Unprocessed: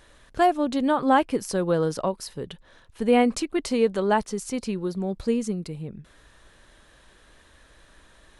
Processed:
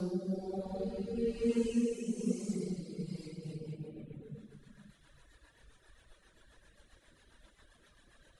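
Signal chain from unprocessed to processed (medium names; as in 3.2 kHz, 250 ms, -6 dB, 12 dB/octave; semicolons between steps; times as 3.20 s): Paulstretch 4.1×, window 0.50 s, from 4.91 s; reverb removal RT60 1.4 s; rotary cabinet horn 1.1 Hz, later 7.5 Hz, at 2.98 s; trim -3.5 dB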